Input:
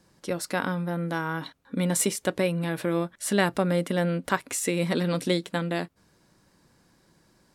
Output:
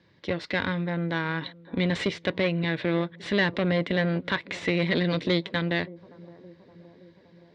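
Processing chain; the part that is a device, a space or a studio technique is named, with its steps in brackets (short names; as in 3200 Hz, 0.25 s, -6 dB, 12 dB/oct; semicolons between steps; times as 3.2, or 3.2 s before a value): analogue delay pedal into a guitar amplifier (analogue delay 0.569 s, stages 4096, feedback 64%, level -21.5 dB; tube stage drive 23 dB, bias 0.75; speaker cabinet 85–4100 Hz, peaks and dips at 97 Hz +7 dB, 210 Hz -3 dB, 770 Hz -7 dB, 1300 Hz -6 dB, 2000 Hz +8 dB, 3700 Hz +6 dB); gain +5.5 dB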